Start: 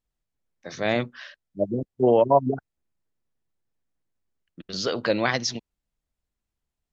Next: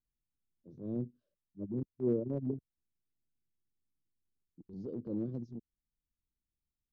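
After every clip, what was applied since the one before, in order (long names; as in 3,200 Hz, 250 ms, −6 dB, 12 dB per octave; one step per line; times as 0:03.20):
inverse Chebyshev low-pass filter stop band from 760 Hz, stop band 40 dB
transient designer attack −7 dB, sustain −3 dB
level −5.5 dB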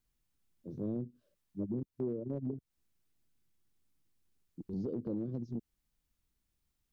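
downward compressor 10 to 1, threshold −43 dBFS, peak gain reduction 17 dB
level +9.5 dB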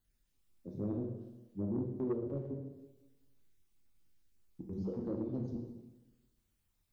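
time-frequency cells dropped at random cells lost 26%
dense smooth reverb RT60 1.1 s, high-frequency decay 0.95×, DRR −0.5 dB
soft clipping −27 dBFS, distortion −18 dB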